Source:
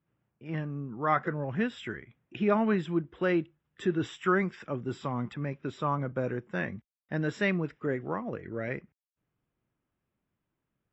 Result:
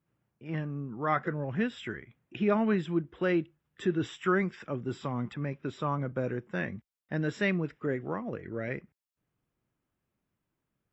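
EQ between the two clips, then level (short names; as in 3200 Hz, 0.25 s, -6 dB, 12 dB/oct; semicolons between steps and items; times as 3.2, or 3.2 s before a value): dynamic EQ 970 Hz, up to -3 dB, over -40 dBFS, Q 1.1; 0.0 dB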